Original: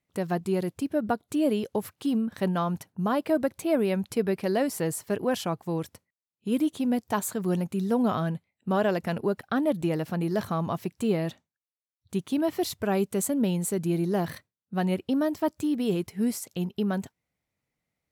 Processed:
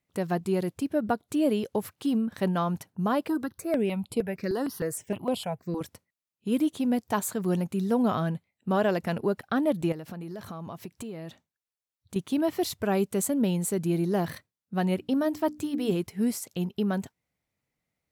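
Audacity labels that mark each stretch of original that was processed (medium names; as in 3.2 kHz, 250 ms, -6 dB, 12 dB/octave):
3.280000	5.810000	stepped phaser 6.5 Hz 620–6000 Hz
9.920000	12.160000	compression, threshold -35 dBFS
14.980000	15.920000	hum notches 60/120/180/240/300 Hz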